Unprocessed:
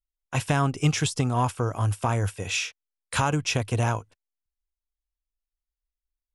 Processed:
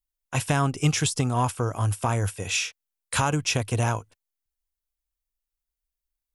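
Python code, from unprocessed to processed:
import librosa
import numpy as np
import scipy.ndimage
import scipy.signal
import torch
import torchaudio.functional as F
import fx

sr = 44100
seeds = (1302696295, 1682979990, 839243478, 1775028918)

y = fx.high_shelf(x, sr, hz=8100.0, db=8.5)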